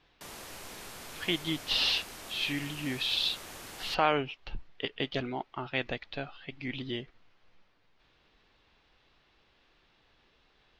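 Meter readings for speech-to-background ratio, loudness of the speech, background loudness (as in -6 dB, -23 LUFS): 12.0 dB, -32.5 LUFS, -44.5 LUFS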